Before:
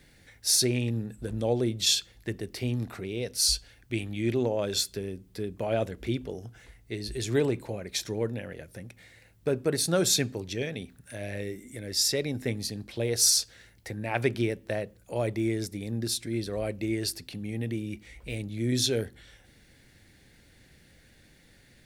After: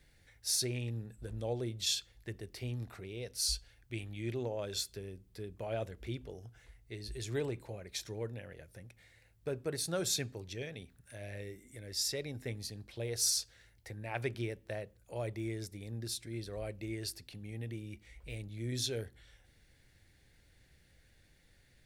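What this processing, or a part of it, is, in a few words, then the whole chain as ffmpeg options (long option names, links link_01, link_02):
low shelf boost with a cut just above: -af "lowshelf=frequency=100:gain=6.5,equalizer=frequency=230:width_type=o:width=1.1:gain=-6,volume=-9dB"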